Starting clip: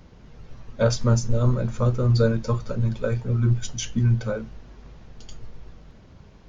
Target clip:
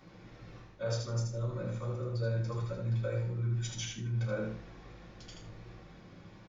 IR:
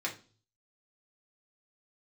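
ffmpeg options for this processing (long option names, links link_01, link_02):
-filter_complex "[0:a]areverse,acompressor=threshold=-30dB:ratio=6,areverse,aecho=1:1:78|156|234:0.631|0.151|0.0363[link_01];[1:a]atrim=start_sample=2205,atrim=end_sample=3528[link_02];[link_01][link_02]afir=irnorm=-1:irlink=0,volume=-5.5dB"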